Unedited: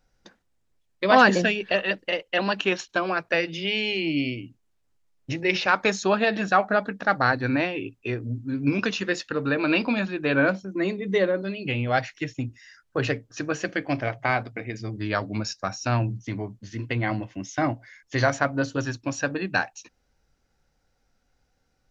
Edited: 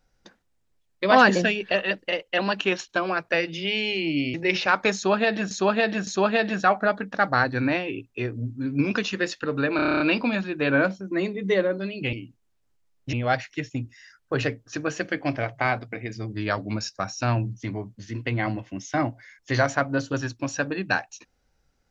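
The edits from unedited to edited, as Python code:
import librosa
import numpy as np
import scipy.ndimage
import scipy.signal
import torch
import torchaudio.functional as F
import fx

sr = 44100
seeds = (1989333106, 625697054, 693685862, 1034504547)

y = fx.edit(x, sr, fx.move(start_s=4.34, length_s=1.0, to_s=11.77),
    fx.repeat(start_s=5.95, length_s=0.56, count=3),
    fx.stutter(start_s=9.64, slice_s=0.03, count=9), tone=tone)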